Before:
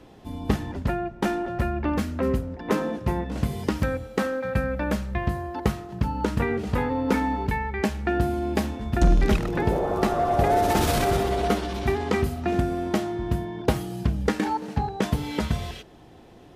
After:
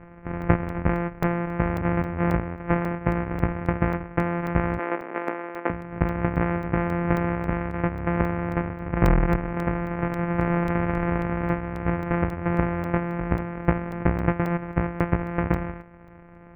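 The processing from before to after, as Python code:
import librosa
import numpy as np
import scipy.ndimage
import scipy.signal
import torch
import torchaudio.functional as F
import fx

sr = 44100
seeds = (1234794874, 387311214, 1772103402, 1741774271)

y = np.r_[np.sort(x[:len(x) // 256 * 256].reshape(-1, 256), axis=1).ravel(), x[len(x) // 256 * 256:]]
y = scipy.signal.sosfilt(scipy.signal.butter(8, 2300.0, 'lowpass', fs=sr, output='sos'), y)
y = fx.rider(y, sr, range_db=5, speed_s=2.0)
y = fx.highpass(y, sr, hz=300.0, slope=24, at=(4.79, 5.7))
y = fx.buffer_crackle(y, sr, first_s=0.42, period_s=0.27, block=64, kind='zero')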